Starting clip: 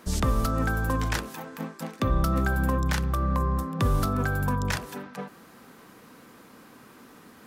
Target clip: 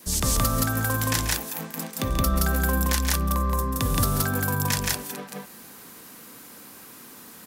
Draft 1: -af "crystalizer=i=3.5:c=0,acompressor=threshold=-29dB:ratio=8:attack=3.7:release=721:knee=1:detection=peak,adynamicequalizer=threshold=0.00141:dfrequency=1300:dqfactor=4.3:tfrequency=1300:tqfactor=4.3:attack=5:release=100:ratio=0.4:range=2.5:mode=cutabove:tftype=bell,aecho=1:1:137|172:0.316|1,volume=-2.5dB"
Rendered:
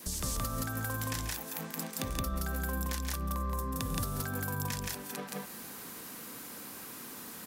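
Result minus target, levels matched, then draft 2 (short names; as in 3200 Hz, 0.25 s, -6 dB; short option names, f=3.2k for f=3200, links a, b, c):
compressor: peak gain reduction +14.5 dB
-af "crystalizer=i=3.5:c=0,adynamicequalizer=threshold=0.00141:dfrequency=1300:dqfactor=4.3:tfrequency=1300:tqfactor=4.3:attack=5:release=100:ratio=0.4:range=2.5:mode=cutabove:tftype=bell,aecho=1:1:137|172:0.316|1,volume=-2.5dB"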